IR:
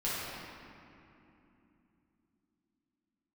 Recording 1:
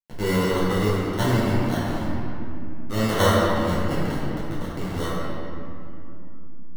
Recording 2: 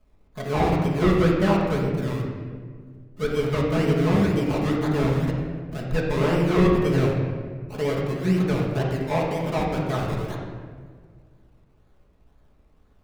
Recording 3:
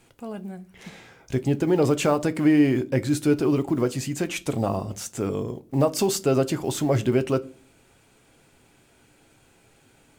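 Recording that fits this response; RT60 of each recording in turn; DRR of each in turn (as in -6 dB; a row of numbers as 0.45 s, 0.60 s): 1; 3.0 s, 1.7 s, 0.40 s; -10.0 dB, -3.5 dB, 10.5 dB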